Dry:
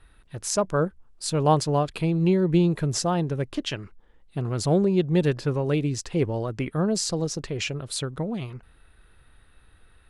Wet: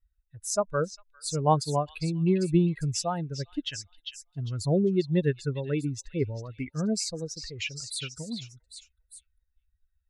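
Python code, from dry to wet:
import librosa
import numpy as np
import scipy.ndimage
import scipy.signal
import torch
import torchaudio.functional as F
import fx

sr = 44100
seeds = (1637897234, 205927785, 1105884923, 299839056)

p1 = fx.bin_expand(x, sr, power=2.0)
y = p1 + fx.echo_stepped(p1, sr, ms=400, hz=3600.0, octaves=0.7, feedback_pct=70, wet_db=-4, dry=0)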